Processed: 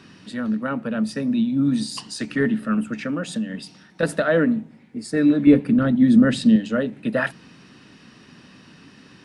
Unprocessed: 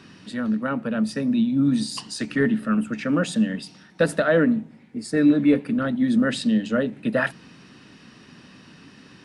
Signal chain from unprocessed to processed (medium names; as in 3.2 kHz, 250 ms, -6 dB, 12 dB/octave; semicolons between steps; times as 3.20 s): 3.03–4.03 s: compression 4:1, threshold -23 dBFS, peak gain reduction 7.5 dB; 5.47–6.56 s: bass shelf 320 Hz +9.5 dB